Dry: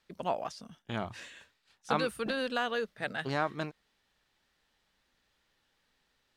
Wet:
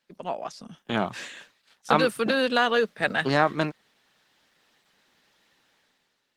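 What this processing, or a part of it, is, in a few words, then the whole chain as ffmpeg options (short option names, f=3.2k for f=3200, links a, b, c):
video call: -af "highpass=f=140:w=0.5412,highpass=f=140:w=1.3066,dynaudnorm=f=150:g=9:m=11.5dB" -ar 48000 -c:a libopus -b:a 16k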